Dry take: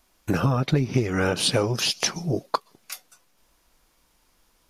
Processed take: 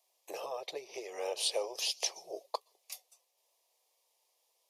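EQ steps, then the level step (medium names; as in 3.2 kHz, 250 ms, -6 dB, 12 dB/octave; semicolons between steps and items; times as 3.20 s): high-pass 440 Hz 24 dB/octave; static phaser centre 600 Hz, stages 4; -8.0 dB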